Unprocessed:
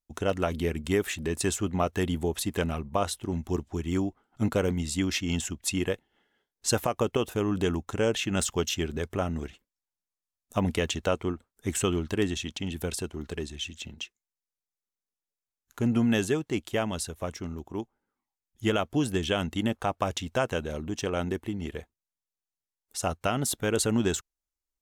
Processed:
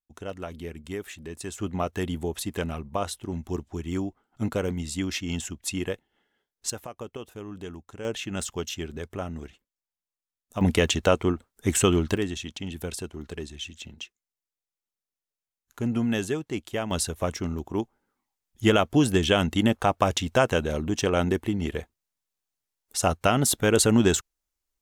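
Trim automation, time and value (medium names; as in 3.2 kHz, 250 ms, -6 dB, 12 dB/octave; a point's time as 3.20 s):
-8.5 dB
from 1.58 s -1.5 dB
from 6.70 s -11.5 dB
from 8.05 s -4 dB
from 10.61 s +6 dB
from 12.17 s -1.5 dB
from 16.91 s +6 dB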